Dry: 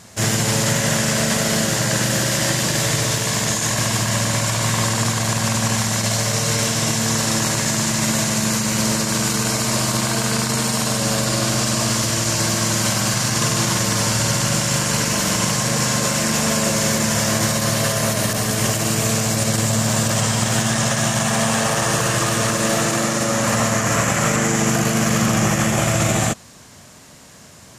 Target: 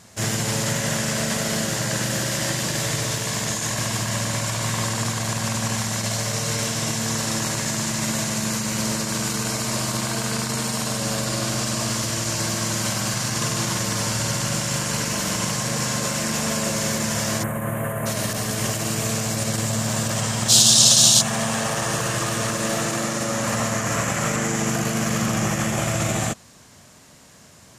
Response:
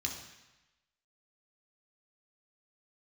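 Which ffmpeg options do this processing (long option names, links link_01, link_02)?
-filter_complex "[0:a]asplit=3[link_01][link_02][link_03];[link_01]afade=type=out:start_time=17.42:duration=0.02[link_04];[link_02]asuperstop=centerf=4900:order=4:qfactor=0.53,afade=type=in:start_time=17.42:duration=0.02,afade=type=out:start_time=18.05:duration=0.02[link_05];[link_03]afade=type=in:start_time=18.05:duration=0.02[link_06];[link_04][link_05][link_06]amix=inputs=3:normalize=0,asplit=3[link_07][link_08][link_09];[link_07]afade=type=out:start_time=20.48:duration=0.02[link_10];[link_08]highshelf=frequency=2800:width_type=q:width=3:gain=12.5,afade=type=in:start_time=20.48:duration=0.02,afade=type=out:start_time=21.2:duration=0.02[link_11];[link_09]afade=type=in:start_time=21.2:duration=0.02[link_12];[link_10][link_11][link_12]amix=inputs=3:normalize=0,volume=-5dB"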